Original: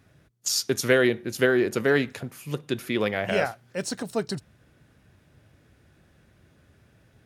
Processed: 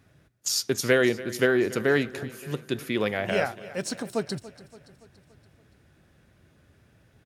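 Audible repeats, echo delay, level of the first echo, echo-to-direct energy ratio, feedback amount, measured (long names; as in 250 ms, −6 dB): 4, 285 ms, −17.5 dB, −16.0 dB, 55%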